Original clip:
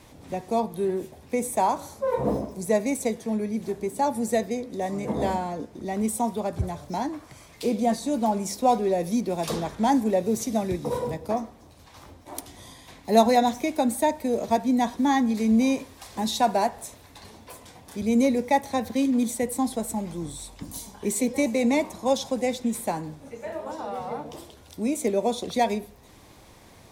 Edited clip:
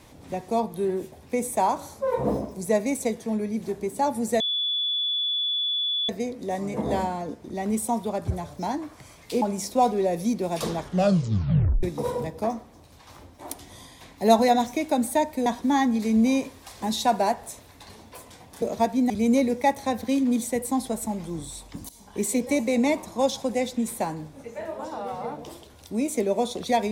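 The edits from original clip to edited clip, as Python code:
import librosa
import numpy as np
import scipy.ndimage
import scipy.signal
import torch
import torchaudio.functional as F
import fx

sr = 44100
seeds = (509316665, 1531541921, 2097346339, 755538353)

y = fx.edit(x, sr, fx.insert_tone(at_s=4.4, length_s=1.69, hz=3440.0, db=-23.0),
    fx.cut(start_s=7.73, length_s=0.56),
    fx.tape_stop(start_s=9.67, length_s=1.03),
    fx.move(start_s=14.33, length_s=0.48, to_s=17.97),
    fx.fade_in_from(start_s=20.76, length_s=0.29, floor_db=-20.0), tone=tone)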